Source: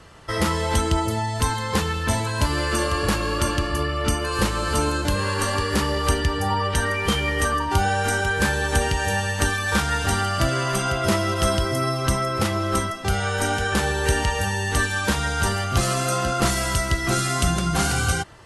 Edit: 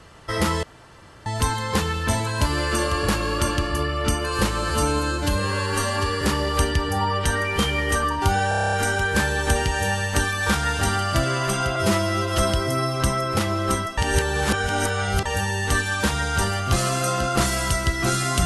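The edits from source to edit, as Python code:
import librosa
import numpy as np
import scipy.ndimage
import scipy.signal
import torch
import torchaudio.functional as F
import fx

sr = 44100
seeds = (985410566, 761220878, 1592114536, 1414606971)

y = fx.edit(x, sr, fx.room_tone_fill(start_s=0.63, length_s=0.63),
    fx.stretch_span(start_s=4.7, length_s=1.01, factor=1.5),
    fx.stutter(start_s=7.98, slice_s=0.03, count=9),
    fx.stretch_span(start_s=11.01, length_s=0.42, factor=1.5),
    fx.reverse_span(start_s=13.02, length_s=1.28), tone=tone)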